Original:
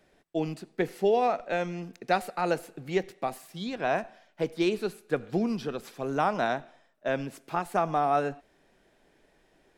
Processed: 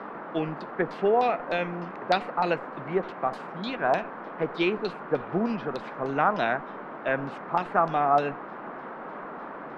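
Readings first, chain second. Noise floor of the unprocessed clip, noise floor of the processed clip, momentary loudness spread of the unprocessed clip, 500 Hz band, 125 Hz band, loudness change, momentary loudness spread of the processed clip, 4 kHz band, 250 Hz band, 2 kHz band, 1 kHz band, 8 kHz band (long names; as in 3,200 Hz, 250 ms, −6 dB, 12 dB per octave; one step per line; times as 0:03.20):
−66 dBFS, −40 dBFS, 10 LU, +1.5 dB, +0.5 dB, +2.0 dB, 15 LU, +2.0 dB, +0.5 dB, +4.0 dB, +3.5 dB, below −10 dB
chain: auto-filter low-pass saw down 3.3 Hz 900–4,400 Hz
noise in a band 170–1,400 Hz −39 dBFS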